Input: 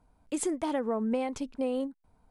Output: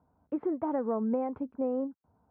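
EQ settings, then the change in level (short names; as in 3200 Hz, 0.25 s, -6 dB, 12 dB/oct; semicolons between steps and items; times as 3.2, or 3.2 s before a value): HPF 73 Hz 24 dB/oct; LPF 1400 Hz 24 dB/oct; air absorption 92 m; 0.0 dB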